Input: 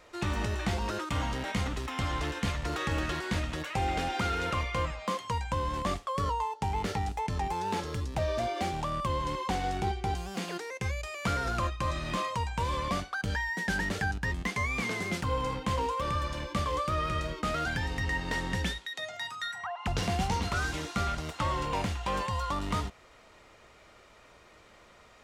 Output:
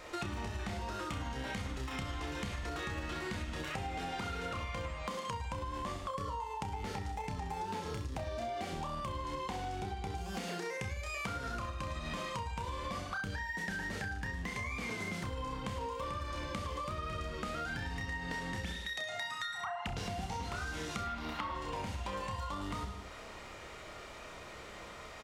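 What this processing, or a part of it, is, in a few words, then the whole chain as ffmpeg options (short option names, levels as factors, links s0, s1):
serial compression, peaks first: -filter_complex "[0:a]asettb=1/sr,asplit=3[s0][s1][s2];[s0]atrim=end=21.034[s3];[s1]atrim=start=21.03:end=21.55,asetpts=PTS-STARTPTS,afade=t=in:d=0.004:c=qsin,afade=t=out:st=0.516:d=0.004:c=qsin,equalizer=f=125:t=o:w=1:g=-11,equalizer=f=250:t=o:w=1:g=9,equalizer=f=500:t=o:w=1:g=-5,equalizer=f=1000:t=o:w=1:g=6,equalizer=f=2000:t=o:w=1:g=3,equalizer=f=4000:t=o:w=1:g=3,equalizer=f=8000:t=o:w=1:g=-11[s4];[s2]atrim=start=21.546[s5];[s3][s4]acrossfade=d=0.004:c1=hsin:c2=qsin[s6];[s6][s5]acrossfade=d=0.004:c1=qsin:c2=hsin,aecho=1:1:30|64.5|104.2|149.8|202.3:0.631|0.398|0.251|0.158|0.1,acompressor=threshold=0.0141:ratio=6,acompressor=threshold=0.00501:ratio=2,volume=2"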